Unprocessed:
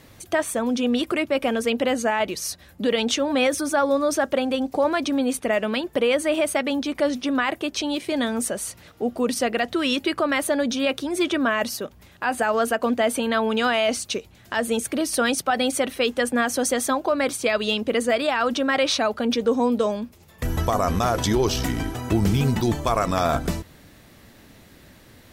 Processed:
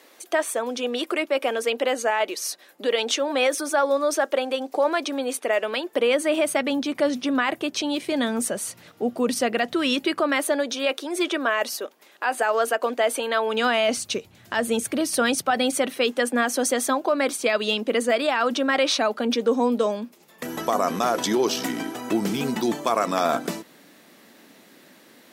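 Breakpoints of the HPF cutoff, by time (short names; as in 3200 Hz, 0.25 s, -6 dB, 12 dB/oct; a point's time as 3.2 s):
HPF 24 dB/oct
5.82 s 330 Hz
6.57 s 120 Hz
9.95 s 120 Hz
10.66 s 330 Hz
13.46 s 330 Hz
14 s 89 Hz
15.43 s 89 Hz
16.11 s 210 Hz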